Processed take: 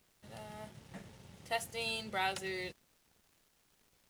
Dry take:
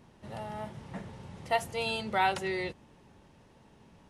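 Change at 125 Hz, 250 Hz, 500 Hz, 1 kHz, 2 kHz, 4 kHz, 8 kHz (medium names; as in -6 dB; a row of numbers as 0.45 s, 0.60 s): -9.0 dB, -8.5 dB, -8.0 dB, -9.0 dB, -5.0 dB, -2.5 dB, +0.5 dB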